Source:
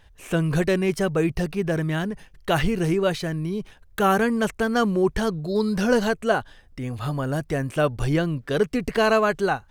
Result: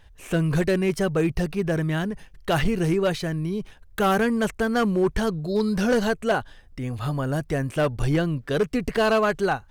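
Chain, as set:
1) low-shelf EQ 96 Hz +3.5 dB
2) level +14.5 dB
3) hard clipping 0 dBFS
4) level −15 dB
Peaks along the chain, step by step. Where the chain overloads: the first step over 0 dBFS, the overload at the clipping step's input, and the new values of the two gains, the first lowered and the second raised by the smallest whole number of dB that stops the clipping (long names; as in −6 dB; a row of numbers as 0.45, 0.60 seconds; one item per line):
−7.5, +7.0, 0.0, −15.0 dBFS
step 2, 7.0 dB
step 2 +7.5 dB, step 4 −8 dB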